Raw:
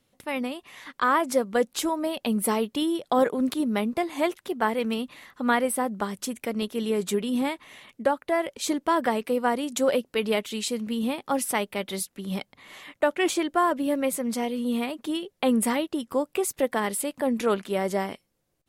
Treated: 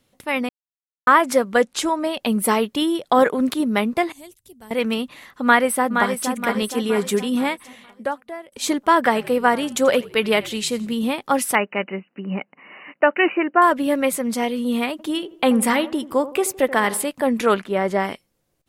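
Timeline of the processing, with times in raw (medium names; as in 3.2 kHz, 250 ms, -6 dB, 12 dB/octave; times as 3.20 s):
0.49–1.07 s: mute
1.62–2.19 s: Chebyshev low-pass 8.6 kHz
4.12–4.71 s: FFT filter 110 Hz 0 dB, 170 Hz -16 dB, 1.3 kHz -30 dB, 8.2 kHz -6 dB
5.43–6.32 s: echo throw 470 ms, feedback 50%, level -6 dB
7.32–8.52 s: fade out linear, to -22 dB
9.04–10.94 s: frequency-shifting echo 85 ms, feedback 43%, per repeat -57 Hz, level -20 dB
11.55–13.62 s: brick-wall FIR band-pass 150–3000 Hz
14.91–17.09 s: feedback echo behind a low-pass 82 ms, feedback 46%, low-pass 1.5 kHz, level -15 dB
17.62–18.03 s: treble shelf 2.6 kHz -> 5.3 kHz -12 dB
whole clip: dynamic bell 1.7 kHz, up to +6 dB, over -37 dBFS, Q 0.7; trim +4.5 dB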